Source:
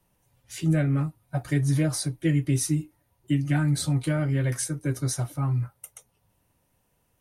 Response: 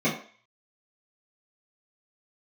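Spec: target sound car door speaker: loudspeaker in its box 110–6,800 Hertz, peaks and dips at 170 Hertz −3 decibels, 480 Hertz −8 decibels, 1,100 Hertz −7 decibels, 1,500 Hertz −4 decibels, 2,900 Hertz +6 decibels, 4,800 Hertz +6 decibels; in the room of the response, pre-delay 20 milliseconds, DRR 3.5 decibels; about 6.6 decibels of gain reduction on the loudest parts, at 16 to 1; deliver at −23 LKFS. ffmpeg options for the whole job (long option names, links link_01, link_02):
-filter_complex "[0:a]acompressor=threshold=-25dB:ratio=16,asplit=2[link_01][link_02];[1:a]atrim=start_sample=2205,adelay=20[link_03];[link_02][link_03]afir=irnorm=-1:irlink=0,volume=-17.5dB[link_04];[link_01][link_04]amix=inputs=2:normalize=0,highpass=110,equalizer=frequency=170:width_type=q:width=4:gain=-3,equalizer=frequency=480:width_type=q:width=4:gain=-8,equalizer=frequency=1100:width_type=q:width=4:gain=-7,equalizer=frequency=1500:width_type=q:width=4:gain=-4,equalizer=frequency=2900:width_type=q:width=4:gain=6,equalizer=frequency=4800:width_type=q:width=4:gain=6,lowpass=frequency=6800:width=0.5412,lowpass=frequency=6800:width=1.3066,volume=5dB"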